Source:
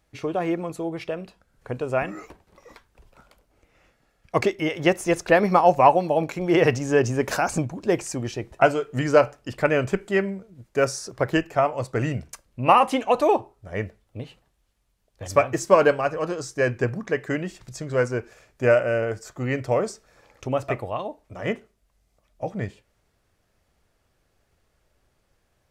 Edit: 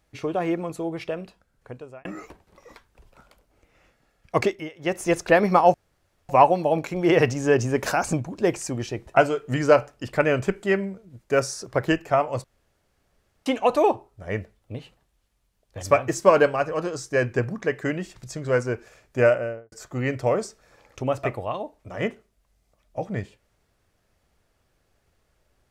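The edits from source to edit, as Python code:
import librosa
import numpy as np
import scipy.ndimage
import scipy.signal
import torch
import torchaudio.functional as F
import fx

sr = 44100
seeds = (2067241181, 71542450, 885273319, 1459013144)

y = fx.studio_fade_out(x, sr, start_s=18.69, length_s=0.48)
y = fx.edit(y, sr, fx.fade_out_span(start_s=1.2, length_s=0.85),
    fx.fade_down_up(start_s=4.45, length_s=0.59, db=-17.0, fade_s=0.26),
    fx.insert_room_tone(at_s=5.74, length_s=0.55),
    fx.room_tone_fill(start_s=11.89, length_s=1.02), tone=tone)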